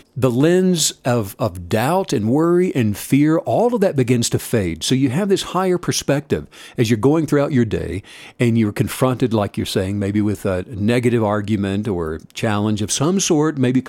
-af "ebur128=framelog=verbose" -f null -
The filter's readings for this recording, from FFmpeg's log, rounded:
Integrated loudness:
  I:         -18.2 LUFS
  Threshold: -28.3 LUFS
Loudness range:
  LRA:         2.6 LU
  Threshold: -38.4 LUFS
  LRA low:   -19.8 LUFS
  LRA high:  -17.2 LUFS